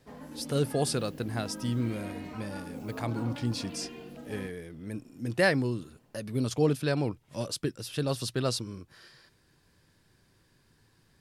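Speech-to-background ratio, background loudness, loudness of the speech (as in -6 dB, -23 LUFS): 10.5 dB, -42.5 LUFS, -32.0 LUFS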